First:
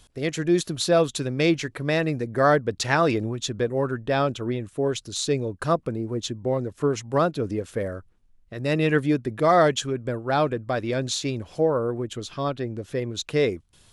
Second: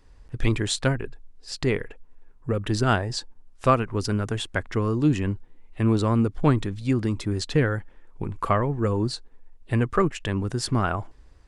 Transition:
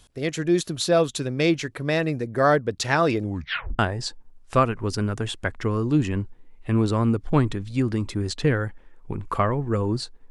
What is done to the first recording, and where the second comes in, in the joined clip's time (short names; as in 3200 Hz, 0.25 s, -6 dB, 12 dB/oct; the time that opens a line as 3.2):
first
3.22 tape stop 0.57 s
3.79 switch to second from 2.9 s